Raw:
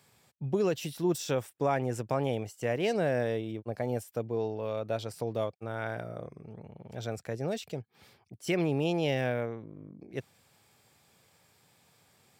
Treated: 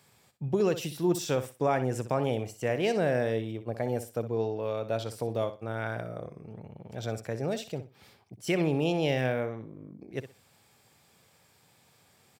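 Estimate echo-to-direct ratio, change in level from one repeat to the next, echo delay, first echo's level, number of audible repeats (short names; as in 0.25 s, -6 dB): -12.0 dB, -13.0 dB, 62 ms, -12.0 dB, 2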